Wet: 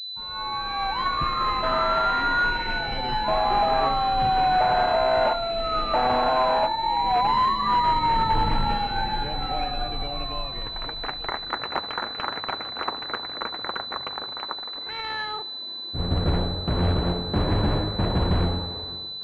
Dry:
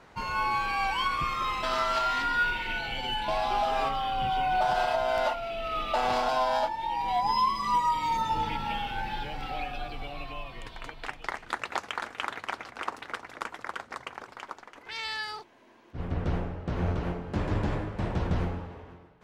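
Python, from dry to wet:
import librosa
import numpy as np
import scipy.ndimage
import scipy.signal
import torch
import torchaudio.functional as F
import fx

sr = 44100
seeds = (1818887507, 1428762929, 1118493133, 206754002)

p1 = fx.fade_in_head(x, sr, length_s=1.49)
p2 = fx.low_shelf(p1, sr, hz=120.0, db=10.0, at=(7.76, 8.75))
p3 = (np.mod(10.0 ** (21.5 / 20.0) * p2 + 1.0, 2.0) - 1.0) / 10.0 ** (21.5 / 20.0)
p4 = p2 + F.gain(torch.from_numpy(p3), -7.0).numpy()
p5 = fx.echo_thinned(p4, sr, ms=73, feedback_pct=57, hz=420.0, wet_db=-21)
p6 = fx.pwm(p5, sr, carrier_hz=4000.0)
y = F.gain(torch.from_numpy(p6), 4.0).numpy()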